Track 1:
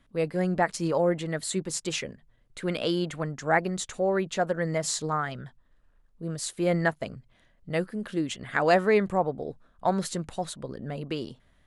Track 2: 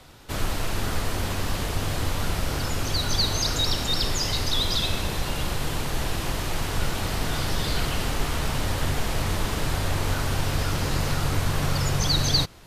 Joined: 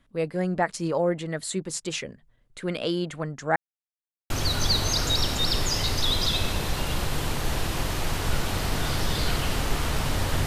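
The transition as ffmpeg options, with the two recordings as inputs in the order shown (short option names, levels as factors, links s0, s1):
-filter_complex "[0:a]apad=whole_dur=10.46,atrim=end=10.46,asplit=2[s0][s1];[s0]atrim=end=3.56,asetpts=PTS-STARTPTS,afade=t=out:st=3.556:d=0.004:c=hsin[s2];[s1]atrim=start=3.56:end=4.3,asetpts=PTS-STARTPTS,volume=0[s3];[1:a]atrim=start=2.79:end=8.95,asetpts=PTS-STARTPTS,afade=t=in:d=0.004:c=hsin[s4];[s2][s3][s4]concat=n=3:v=0:a=1"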